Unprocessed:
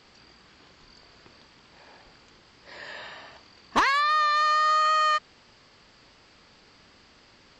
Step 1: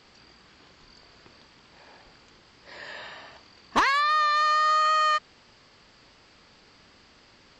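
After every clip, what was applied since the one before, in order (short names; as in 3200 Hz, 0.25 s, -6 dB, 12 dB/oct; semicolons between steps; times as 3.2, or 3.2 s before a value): nothing audible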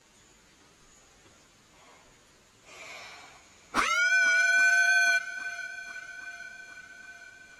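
inharmonic rescaling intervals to 113%; notches 60/120/180/240 Hz; swung echo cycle 0.814 s, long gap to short 1.5:1, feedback 52%, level -17 dB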